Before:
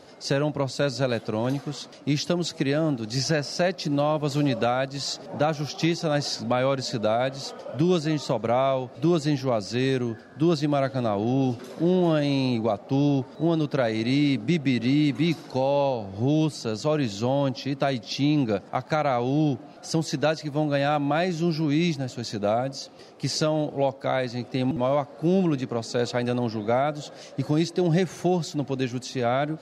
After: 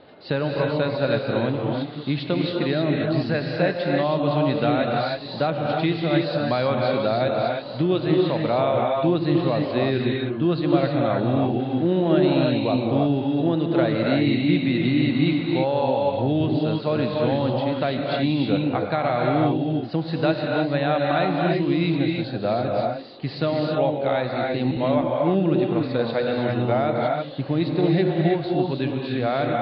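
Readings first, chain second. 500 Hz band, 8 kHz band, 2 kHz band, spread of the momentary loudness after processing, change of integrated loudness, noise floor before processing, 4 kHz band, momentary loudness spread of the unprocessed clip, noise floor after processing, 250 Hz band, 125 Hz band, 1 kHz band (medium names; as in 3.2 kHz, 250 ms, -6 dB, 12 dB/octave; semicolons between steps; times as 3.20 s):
+3.5 dB, under -35 dB, +3.5 dB, 5 LU, +3.0 dB, -45 dBFS, +0.5 dB, 5 LU, -33 dBFS, +3.0 dB, +2.5 dB, +3.0 dB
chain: steep low-pass 4.2 kHz 72 dB/octave; gated-style reverb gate 350 ms rising, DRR -0.5 dB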